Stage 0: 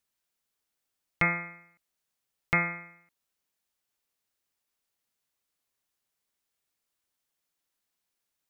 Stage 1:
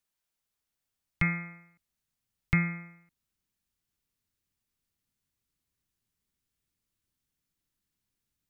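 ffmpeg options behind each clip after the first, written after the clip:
-filter_complex "[0:a]asubboost=boost=7:cutoff=230,acrossover=split=330|1300[s0][s1][s2];[s1]acompressor=threshold=0.00562:ratio=6[s3];[s0][s3][s2]amix=inputs=3:normalize=0,volume=0.75"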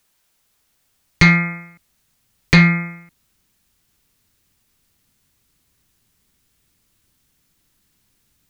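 -af "aeval=exprs='0.211*sin(PI/2*2.24*val(0)/0.211)':c=same,volume=2.66"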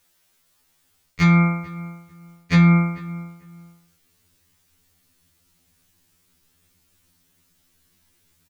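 -filter_complex "[0:a]areverse,acompressor=threshold=0.141:ratio=12,areverse,asplit=2[s0][s1];[s1]adelay=444,lowpass=f=1800:p=1,volume=0.141,asplit=2[s2][s3];[s3]adelay=444,lowpass=f=1800:p=1,volume=0.23[s4];[s0][s2][s4]amix=inputs=3:normalize=0,afftfilt=real='re*2*eq(mod(b,4),0)':imag='im*2*eq(mod(b,4),0)':win_size=2048:overlap=0.75,volume=1.5"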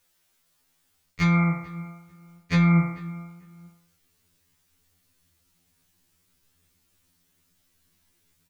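-af "flanger=delay=9.6:depth=9.4:regen=68:speed=0.78:shape=sinusoidal"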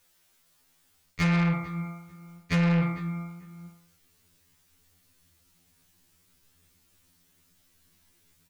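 -af "asoftclip=type=tanh:threshold=0.0668,volume=1.41"

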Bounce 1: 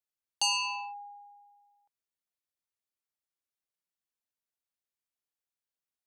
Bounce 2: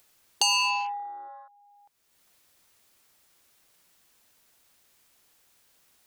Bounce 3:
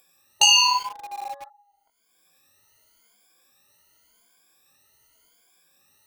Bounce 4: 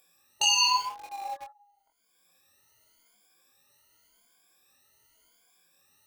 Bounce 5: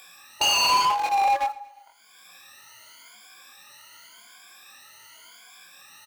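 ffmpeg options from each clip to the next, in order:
-af "acompressor=threshold=0.0316:ratio=6,afwtdn=0.00398,acompressor=mode=upward:threshold=0.00501:ratio=2.5,volume=2.82"
-filter_complex "[0:a]afftfilt=real='re*pow(10,24/40*sin(2*PI*(1.8*log(max(b,1)*sr/1024/100)/log(2)-(0.89)*(pts-256)/sr)))':imag='im*pow(10,24/40*sin(2*PI*(1.8*log(max(b,1)*sr/1024/100)/log(2)-(0.89)*(pts-256)/sr)))':win_size=1024:overlap=0.75,flanger=delay=15.5:depth=6:speed=1.8,asplit=2[s0][s1];[s1]acrusher=bits=5:mix=0:aa=0.000001,volume=0.531[s2];[s0][s2]amix=inputs=2:normalize=0,volume=0.891"
-af "alimiter=limit=0.316:level=0:latency=1:release=170,flanger=delay=22.5:depth=3.2:speed=0.89"
-filter_complex "[0:a]asplit=2[s0][s1];[s1]highpass=f=720:p=1,volume=31.6,asoftclip=type=tanh:threshold=0.251[s2];[s0][s2]amix=inputs=2:normalize=0,lowpass=f=2800:p=1,volume=0.501,acrossover=split=300|650|3600[s3][s4][s5][s6];[s4]aeval=exprs='val(0)*gte(abs(val(0)),0.00596)':c=same[s7];[s3][s7][s5][s6]amix=inputs=4:normalize=0,aecho=1:1:116|232|348|464:0.0841|0.0438|0.0228|0.0118"

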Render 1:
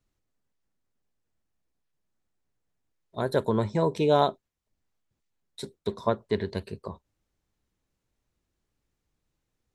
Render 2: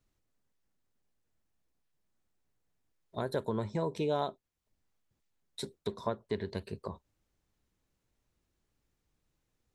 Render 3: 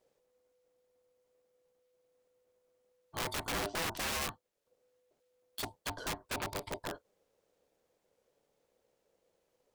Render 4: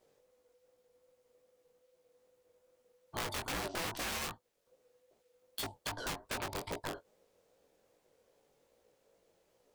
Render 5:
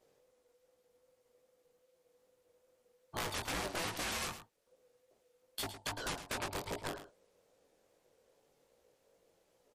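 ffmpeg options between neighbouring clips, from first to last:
-af "acompressor=threshold=0.0158:ratio=2"
-af "aeval=exprs='(mod(42.2*val(0)+1,2)-1)/42.2':c=same,aeval=exprs='val(0)*sin(2*PI*500*n/s)':c=same,volume=1.78"
-af "acompressor=threshold=0.00891:ratio=4,flanger=delay=16.5:depth=6.3:speed=2.5,volume=2.51"
-filter_complex "[0:a]asplit=2[s0][s1];[s1]aecho=0:1:109:0.266[s2];[s0][s2]amix=inputs=2:normalize=0" -ar 44100 -c:a libmp3lame -b:a 56k

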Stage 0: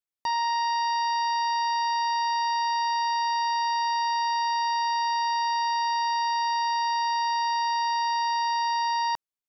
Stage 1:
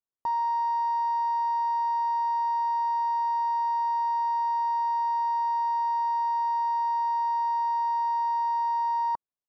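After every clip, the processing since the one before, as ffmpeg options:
-af "firequalizer=gain_entry='entry(1100,0);entry(2300,-23);entry(5900,-21)':delay=0.05:min_phase=1"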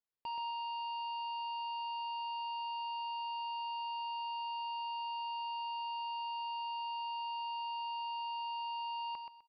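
-af "aresample=11025,asoftclip=type=tanh:threshold=0.0168,aresample=44100,aecho=1:1:127|254|381:0.501|0.12|0.0289,volume=0.708"

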